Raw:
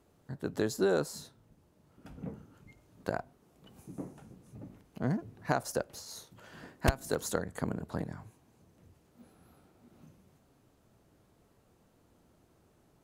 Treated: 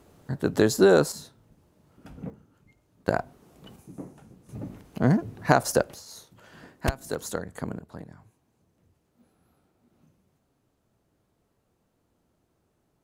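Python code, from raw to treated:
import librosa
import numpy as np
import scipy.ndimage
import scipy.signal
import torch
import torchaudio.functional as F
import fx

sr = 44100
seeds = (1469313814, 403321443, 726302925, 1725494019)

y = fx.gain(x, sr, db=fx.steps((0.0, 10.5), (1.12, 4.0), (2.3, -4.0), (3.08, 9.0), (3.76, 1.5), (4.49, 10.5), (5.94, 1.0), (7.79, -5.5)))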